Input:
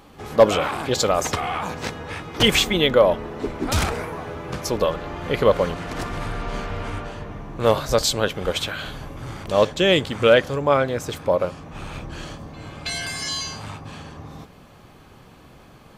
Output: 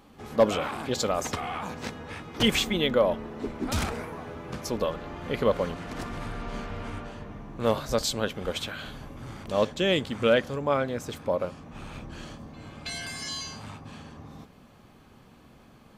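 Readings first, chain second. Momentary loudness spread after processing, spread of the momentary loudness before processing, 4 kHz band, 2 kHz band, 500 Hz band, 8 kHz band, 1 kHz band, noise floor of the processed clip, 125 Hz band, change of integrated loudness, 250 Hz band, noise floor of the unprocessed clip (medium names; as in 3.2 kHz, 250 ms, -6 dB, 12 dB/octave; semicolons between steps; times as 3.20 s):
18 LU, 18 LU, -7.5 dB, -7.5 dB, -7.5 dB, -7.5 dB, -7.5 dB, -54 dBFS, -7.0 dB, -7.0 dB, -4.0 dB, -48 dBFS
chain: peaking EQ 230 Hz +6.5 dB 0.4 oct; trim -7.5 dB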